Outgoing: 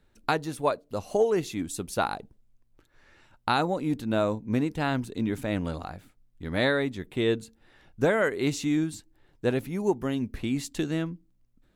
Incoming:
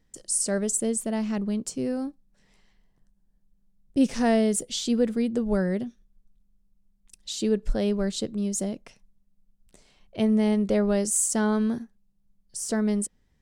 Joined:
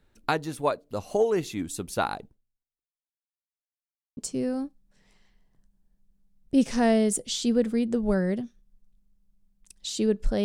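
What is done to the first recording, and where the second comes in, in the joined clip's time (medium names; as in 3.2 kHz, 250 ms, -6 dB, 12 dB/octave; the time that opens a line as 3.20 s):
outgoing
2.25–3.52 s: fade out exponential
3.52–4.17 s: mute
4.17 s: go over to incoming from 1.60 s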